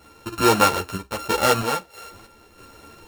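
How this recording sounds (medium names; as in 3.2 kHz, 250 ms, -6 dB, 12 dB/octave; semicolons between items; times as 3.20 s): a buzz of ramps at a fixed pitch in blocks of 32 samples; random-step tremolo 3.1 Hz, depth 70%; a shimmering, thickened sound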